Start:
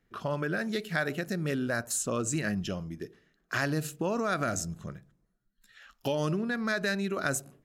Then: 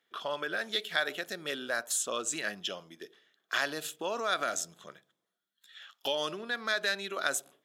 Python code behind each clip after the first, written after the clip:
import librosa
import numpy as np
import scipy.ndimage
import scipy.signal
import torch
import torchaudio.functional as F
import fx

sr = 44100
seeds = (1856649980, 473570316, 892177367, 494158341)

y = scipy.signal.sosfilt(scipy.signal.butter(2, 530.0, 'highpass', fs=sr, output='sos'), x)
y = fx.peak_eq(y, sr, hz=3400.0, db=15.0, octaves=0.25)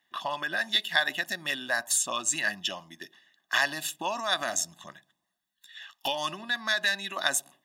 y = fx.hpss(x, sr, part='harmonic', gain_db=-5)
y = y + 0.91 * np.pad(y, (int(1.1 * sr / 1000.0), 0))[:len(y)]
y = y * 10.0 ** (4.0 / 20.0)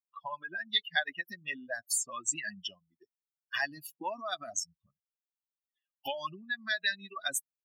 y = fx.bin_expand(x, sr, power=3.0)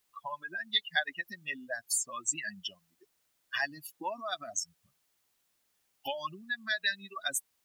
y = fx.dmg_noise_colour(x, sr, seeds[0], colour='white', level_db=-76.0)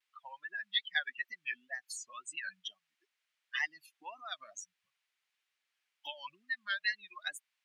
y = fx.wow_flutter(x, sr, seeds[1], rate_hz=2.1, depth_cents=140.0)
y = fx.bandpass_q(y, sr, hz=2300.0, q=1.4)